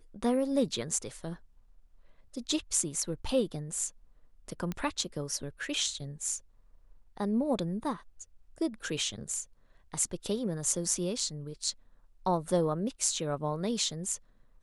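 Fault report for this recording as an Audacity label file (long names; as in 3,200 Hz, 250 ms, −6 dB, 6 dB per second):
4.720000	4.720000	click −21 dBFS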